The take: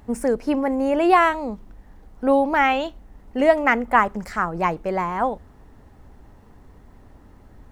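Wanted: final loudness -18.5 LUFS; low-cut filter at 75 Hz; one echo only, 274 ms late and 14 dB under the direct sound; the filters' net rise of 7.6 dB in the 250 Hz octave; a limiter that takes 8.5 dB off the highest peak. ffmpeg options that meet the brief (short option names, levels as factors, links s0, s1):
-af "highpass=75,equalizer=f=250:t=o:g=9,alimiter=limit=0.299:level=0:latency=1,aecho=1:1:274:0.2,volume=1.19"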